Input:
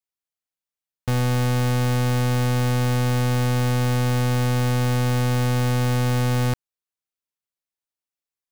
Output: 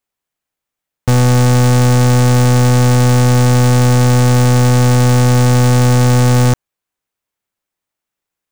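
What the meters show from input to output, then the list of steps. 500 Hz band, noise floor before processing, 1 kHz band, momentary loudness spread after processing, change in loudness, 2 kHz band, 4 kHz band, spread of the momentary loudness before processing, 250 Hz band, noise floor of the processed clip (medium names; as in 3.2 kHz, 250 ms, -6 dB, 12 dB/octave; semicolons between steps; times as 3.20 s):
+11.0 dB, under -85 dBFS, +10.5 dB, 1 LU, +11.0 dB, +8.5 dB, +9.0 dB, 1 LU, +11.0 dB, -83 dBFS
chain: self-modulated delay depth 0.069 ms; in parallel at -5.5 dB: sample-and-hold 8×; on the sum: trim +7.5 dB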